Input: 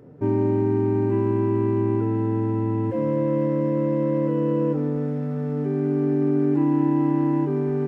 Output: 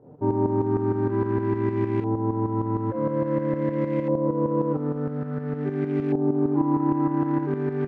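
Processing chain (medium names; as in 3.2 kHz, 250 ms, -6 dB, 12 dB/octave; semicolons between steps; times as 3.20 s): companded quantiser 6-bit; LFO low-pass saw up 0.49 Hz 810–2300 Hz; tremolo saw up 6.5 Hz, depth 65%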